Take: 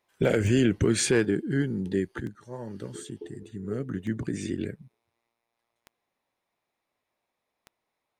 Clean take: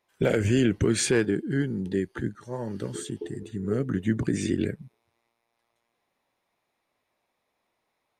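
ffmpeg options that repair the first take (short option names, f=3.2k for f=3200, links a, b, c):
-af "adeclick=t=4,asetnsamples=n=441:p=0,asendcmd='2.2 volume volume 5dB',volume=0dB"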